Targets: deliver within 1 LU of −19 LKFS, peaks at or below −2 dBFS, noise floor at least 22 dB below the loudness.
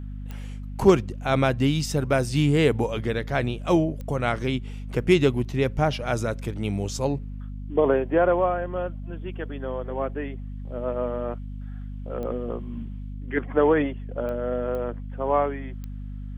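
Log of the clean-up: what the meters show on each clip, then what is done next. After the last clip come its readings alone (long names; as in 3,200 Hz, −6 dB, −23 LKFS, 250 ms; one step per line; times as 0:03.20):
number of clicks 6; mains hum 50 Hz; hum harmonics up to 250 Hz; level of the hum −32 dBFS; integrated loudness −25.0 LKFS; sample peak −5.0 dBFS; target loudness −19.0 LKFS
→ click removal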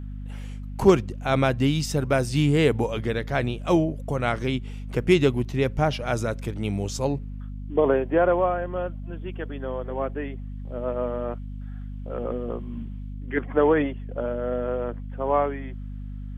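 number of clicks 0; mains hum 50 Hz; hum harmonics up to 250 Hz; level of the hum −32 dBFS
→ hum removal 50 Hz, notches 5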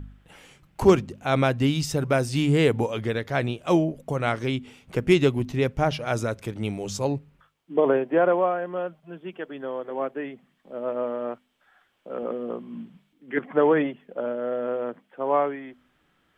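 mains hum none found; integrated loudness −25.5 LKFS; sample peak −5.0 dBFS; target loudness −19.0 LKFS
→ level +6.5 dB
brickwall limiter −2 dBFS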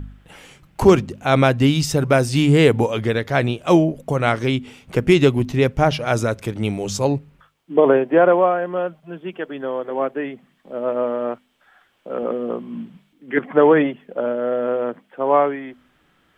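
integrated loudness −19.0 LKFS; sample peak −2.0 dBFS; background noise floor −61 dBFS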